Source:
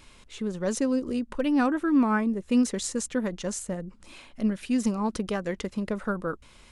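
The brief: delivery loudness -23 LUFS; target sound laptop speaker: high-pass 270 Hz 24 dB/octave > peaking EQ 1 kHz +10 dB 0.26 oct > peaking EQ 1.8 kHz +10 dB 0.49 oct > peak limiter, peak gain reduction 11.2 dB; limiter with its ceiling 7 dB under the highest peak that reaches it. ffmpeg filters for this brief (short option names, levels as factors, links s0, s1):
-af "alimiter=limit=0.1:level=0:latency=1,highpass=f=270:w=0.5412,highpass=f=270:w=1.3066,equalizer=f=1000:t=o:w=0.26:g=10,equalizer=f=1800:t=o:w=0.49:g=10,volume=3.76,alimiter=limit=0.224:level=0:latency=1"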